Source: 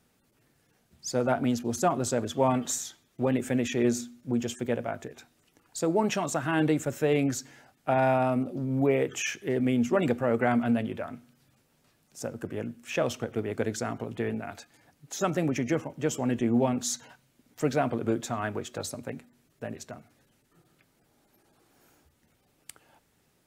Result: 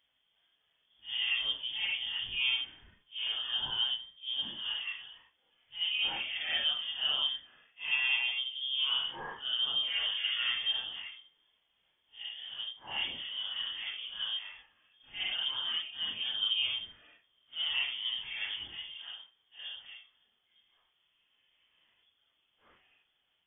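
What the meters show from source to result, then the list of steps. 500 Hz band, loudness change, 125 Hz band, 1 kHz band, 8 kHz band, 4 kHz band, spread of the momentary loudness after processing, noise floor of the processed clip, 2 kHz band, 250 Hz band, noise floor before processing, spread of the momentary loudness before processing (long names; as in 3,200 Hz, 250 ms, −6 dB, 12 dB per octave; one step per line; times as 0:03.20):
−30.5 dB, −3.5 dB, below −25 dB, −17.0 dB, below −40 dB, +14.5 dB, 15 LU, −76 dBFS, +1.0 dB, below −30 dB, −69 dBFS, 14 LU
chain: random phases in long frames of 200 ms
voice inversion scrambler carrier 3,400 Hz
level −7 dB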